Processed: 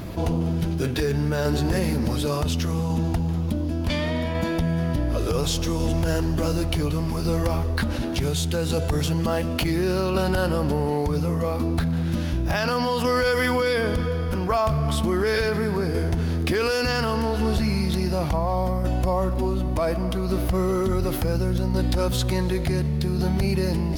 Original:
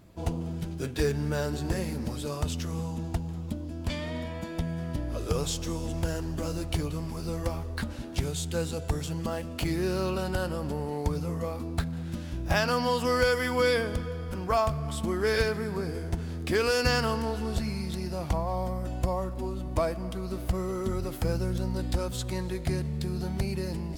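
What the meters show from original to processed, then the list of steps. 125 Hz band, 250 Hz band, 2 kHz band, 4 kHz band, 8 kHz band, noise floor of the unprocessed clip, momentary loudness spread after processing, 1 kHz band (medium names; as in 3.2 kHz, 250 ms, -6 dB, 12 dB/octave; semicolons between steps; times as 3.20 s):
+7.5 dB, +8.0 dB, +4.5 dB, +5.5 dB, +4.5 dB, -37 dBFS, 3 LU, +5.5 dB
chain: peaking EQ 7.7 kHz -7.5 dB 0.36 oct; peak limiter -21.5 dBFS, peak gain reduction 10 dB; tremolo saw down 0.69 Hz, depth 40%; level flattener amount 50%; trim +8 dB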